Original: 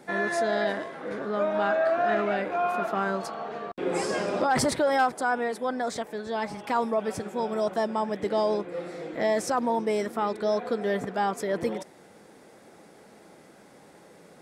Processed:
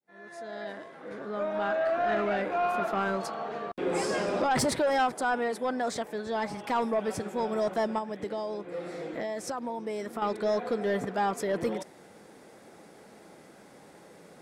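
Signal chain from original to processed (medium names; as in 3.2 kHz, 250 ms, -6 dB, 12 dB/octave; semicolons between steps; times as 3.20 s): fade-in on the opening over 2.45 s; 7.98–10.22 s: compression, threshold -31 dBFS, peak gain reduction 10 dB; saturation -19.5 dBFS, distortion -18 dB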